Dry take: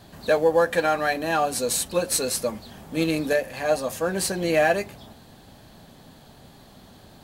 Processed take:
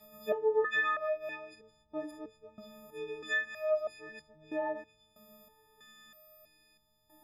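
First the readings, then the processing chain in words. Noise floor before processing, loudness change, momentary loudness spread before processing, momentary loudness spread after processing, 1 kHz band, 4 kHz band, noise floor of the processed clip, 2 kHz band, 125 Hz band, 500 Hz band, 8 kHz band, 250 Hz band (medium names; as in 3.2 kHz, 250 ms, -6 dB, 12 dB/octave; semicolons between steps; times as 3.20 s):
-50 dBFS, -10.5 dB, 7 LU, 21 LU, -13.0 dB, -16.0 dB, -72 dBFS, -6.5 dB, under -25 dB, -11.0 dB, -33.0 dB, -18.0 dB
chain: partials quantised in pitch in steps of 6 st; low-pass that closes with the level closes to 1.3 kHz, closed at -13 dBFS; resonator arpeggio 3.1 Hz 210–730 Hz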